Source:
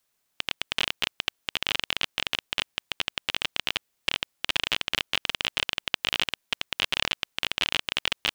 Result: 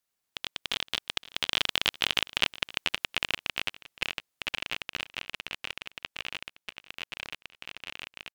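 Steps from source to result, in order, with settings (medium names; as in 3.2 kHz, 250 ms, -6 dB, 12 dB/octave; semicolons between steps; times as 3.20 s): Doppler pass-by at 2.22 s, 32 m/s, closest 25 m; delay 516 ms -19 dB; trim +2.5 dB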